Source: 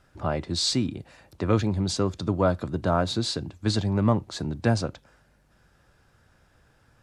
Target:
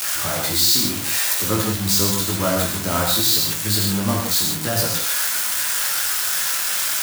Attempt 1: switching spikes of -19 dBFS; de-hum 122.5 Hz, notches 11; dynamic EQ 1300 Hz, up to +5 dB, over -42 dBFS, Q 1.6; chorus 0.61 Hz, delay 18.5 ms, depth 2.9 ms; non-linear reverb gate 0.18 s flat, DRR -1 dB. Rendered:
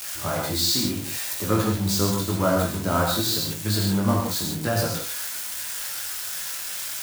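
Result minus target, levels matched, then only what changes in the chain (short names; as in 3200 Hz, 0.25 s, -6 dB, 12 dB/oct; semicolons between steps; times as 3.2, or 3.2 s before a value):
switching spikes: distortion -9 dB
change: switching spikes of -9.5 dBFS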